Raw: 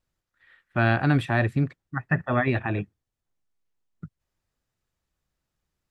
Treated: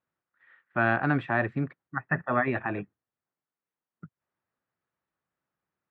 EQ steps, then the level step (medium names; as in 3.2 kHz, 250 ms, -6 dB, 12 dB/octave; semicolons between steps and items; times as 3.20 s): high-pass 160 Hz 12 dB/octave; low-pass 2.2 kHz 12 dB/octave; peaking EQ 1.3 kHz +5 dB 1.6 oct; -3.5 dB